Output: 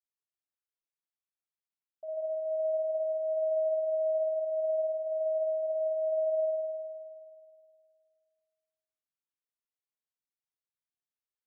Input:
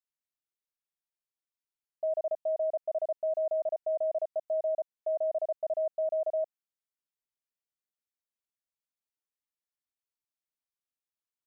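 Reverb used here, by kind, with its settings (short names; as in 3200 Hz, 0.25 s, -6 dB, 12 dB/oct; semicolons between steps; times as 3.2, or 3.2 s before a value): spring tank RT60 2.2 s, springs 52 ms, chirp 20 ms, DRR -3.5 dB; gain -11.5 dB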